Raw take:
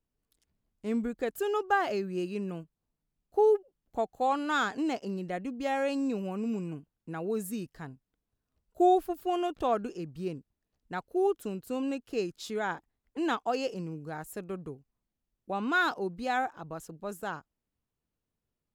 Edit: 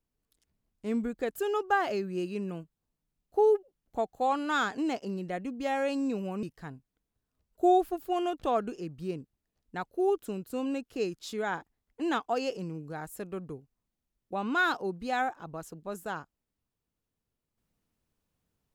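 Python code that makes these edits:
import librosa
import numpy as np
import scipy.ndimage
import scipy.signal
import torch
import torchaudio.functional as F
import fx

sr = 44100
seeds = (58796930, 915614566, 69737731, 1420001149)

y = fx.edit(x, sr, fx.cut(start_s=6.43, length_s=1.17), tone=tone)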